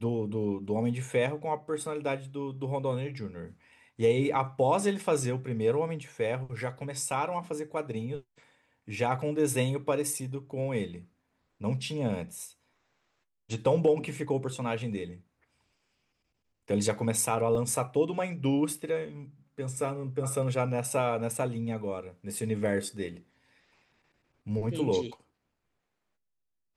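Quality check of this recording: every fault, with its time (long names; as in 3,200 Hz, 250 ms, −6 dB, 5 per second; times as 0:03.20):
0:17.55: drop-out 2.2 ms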